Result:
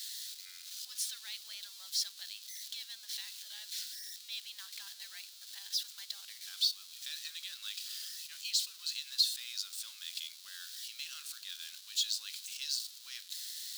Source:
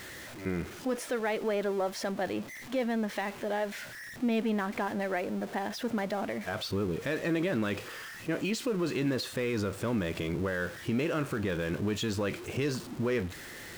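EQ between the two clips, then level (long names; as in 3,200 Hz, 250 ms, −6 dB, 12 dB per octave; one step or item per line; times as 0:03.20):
four-pole ladder high-pass 1,500 Hz, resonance 35%
spectral tilt +2.5 dB per octave
high shelf with overshoot 2,900 Hz +12 dB, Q 3
−8.0 dB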